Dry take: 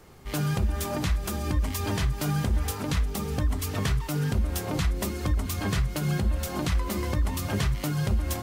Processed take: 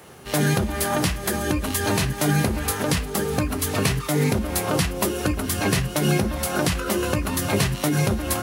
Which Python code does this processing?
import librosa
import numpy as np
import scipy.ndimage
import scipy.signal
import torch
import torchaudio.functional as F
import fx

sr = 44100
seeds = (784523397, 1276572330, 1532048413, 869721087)

y = scipy.signal.sosfilt(scipy.signal.butter(2, 110.0, 'highpass', fs=sr, output='sos'), x)
y = fx.peak_eq(y, sr, hz=7800.0, db=7.0, octaves=0.25)
y = fx.formant_shift(y, sr, semitones=5)
y = F.gain(torch.from_numpy(y), 7.5).numpy()